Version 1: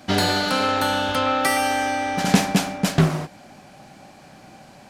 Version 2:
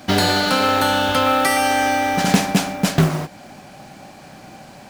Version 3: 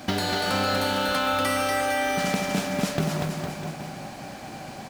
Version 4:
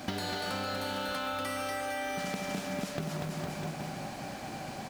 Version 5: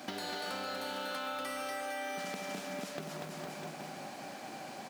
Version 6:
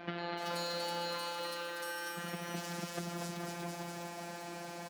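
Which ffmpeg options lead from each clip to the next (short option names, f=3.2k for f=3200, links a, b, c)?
-filter_complex "[0:a]asplit=2[a][b];[b]alimiter=limit=-13dB:level=0:latency=1:release=436,volume=3dB[c];[a][c]amix=inputs=2:normalize=0,acrusher=bits=5:mode=log:mix=0:aa=0.000001,volume=-2.5dB"
-filter_complex "[0:a]acompressor=threshold=-24dB:ratio=6,asplit=2[a][b];[b]aecho=0:1:240|456|650.4|825.4|982.8:0.631|0.398|0.251|0.158|0.1[c];[a][c]amix=inputs=2:normalize=0"
-af "acompressor=threshold=-30dB:ratio=6,volume=-2dB"
-af "highpass=240,volume=-3.5dB"
-filter_complex "[0:a]afftfilt=real='hypot(re,im)*cos(PI*b)':imag='0':win_size=1024:overlap=0.75,acrossover=split=3300[a][b];[b]adelay=380[c];[a][c]amix=inputs=2:normalize=0,volume=5.5dB"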